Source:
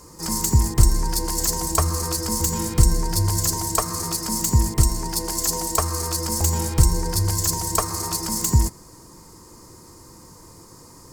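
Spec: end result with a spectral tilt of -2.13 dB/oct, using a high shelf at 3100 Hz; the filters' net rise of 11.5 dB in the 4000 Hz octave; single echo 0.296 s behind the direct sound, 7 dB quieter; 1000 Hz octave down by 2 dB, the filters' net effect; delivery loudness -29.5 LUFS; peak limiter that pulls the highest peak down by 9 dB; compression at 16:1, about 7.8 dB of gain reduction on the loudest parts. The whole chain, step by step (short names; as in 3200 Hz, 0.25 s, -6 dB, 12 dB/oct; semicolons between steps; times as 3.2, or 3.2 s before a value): bell 1000 Hz -3.5 dB; high shelf 3100 Hz +8.5 dB; bell 4000 Hz +7.5 dB; compressor 16:1, threshold -15 dBFS; limiter -11 dBFS; echo 0.296 s -7 dB; gain -9 dB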